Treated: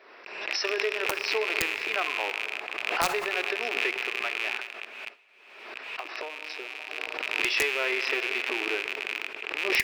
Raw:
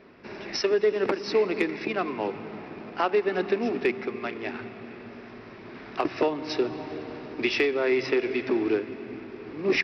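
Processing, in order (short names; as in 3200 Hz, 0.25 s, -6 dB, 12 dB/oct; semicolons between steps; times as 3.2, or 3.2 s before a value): rattling part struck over -42 dBFS, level -17 dBFS; Bessel high-pass 680 Hz, order 4; gate -39 dBFS, range -31 dB; 4.61–6.98 compressor 5:1, threshold -35 dBFS, peak gain reduction 11 dB; wrapped overs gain 14.5 dB; plate-style reverb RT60 1.5 s, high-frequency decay 0.9×, DRR 14.5 dB; backwards sustainer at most 49 dB/s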